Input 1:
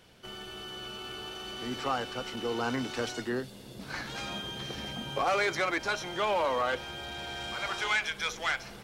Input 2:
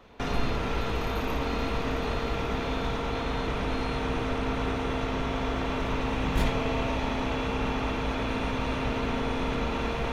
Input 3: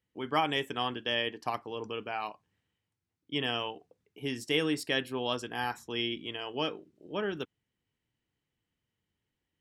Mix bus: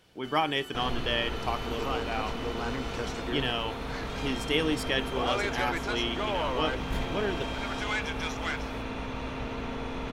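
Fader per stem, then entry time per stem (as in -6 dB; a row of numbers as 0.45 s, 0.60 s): -3.5 dB, -6.0 dB, +1.5 dB; 0.00 s, 0.55 s, 0.00 s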